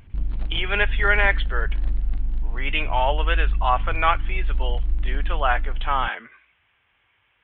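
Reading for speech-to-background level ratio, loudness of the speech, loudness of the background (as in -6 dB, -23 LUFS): 4.0 dB, -24.5 LUFS, -28.5 LUFS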